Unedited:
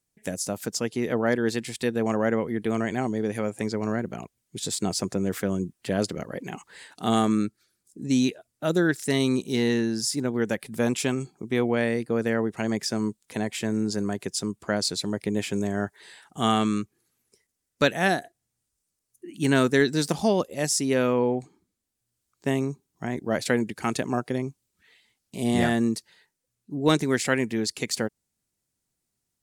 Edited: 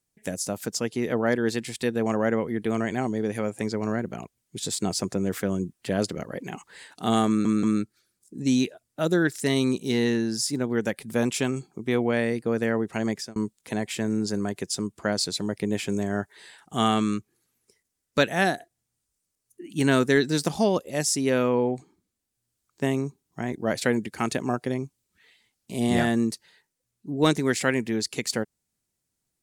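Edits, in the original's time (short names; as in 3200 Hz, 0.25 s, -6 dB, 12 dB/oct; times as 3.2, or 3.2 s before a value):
7.27 stutter 0.18 s, 3 plays
12.74–13 fade out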